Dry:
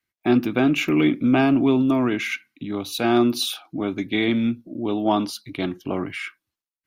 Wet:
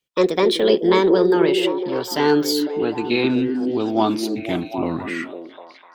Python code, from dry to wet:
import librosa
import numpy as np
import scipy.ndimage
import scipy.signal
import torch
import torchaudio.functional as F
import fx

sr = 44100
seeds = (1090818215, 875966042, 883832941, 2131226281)

y = fx.speed_glide(x, sr, from_pct=152, to_pct=79)
y = fx.echo_stepped(y, sr, ms=251, hz=290.0, octaves=0.7, feedback_pct=70, wet_db=-3)
y = y * 10.0 ** (1.5 / 20.0)